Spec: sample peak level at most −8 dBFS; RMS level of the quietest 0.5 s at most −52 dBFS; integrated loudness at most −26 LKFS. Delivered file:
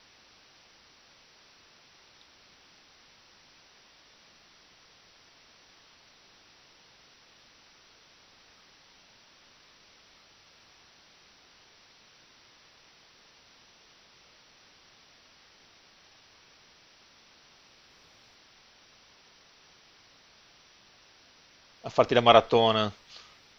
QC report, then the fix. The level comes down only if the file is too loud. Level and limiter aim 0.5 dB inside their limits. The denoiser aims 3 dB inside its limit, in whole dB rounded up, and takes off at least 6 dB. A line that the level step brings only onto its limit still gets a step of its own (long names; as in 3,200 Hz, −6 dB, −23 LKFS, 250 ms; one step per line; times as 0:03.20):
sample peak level −3.0 dBFS: out of spec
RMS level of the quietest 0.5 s −59 dBFS: in spec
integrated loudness −23.0 LKFS: out of spec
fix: level −3.5 dB
brickwall limiter −8.5 dBFS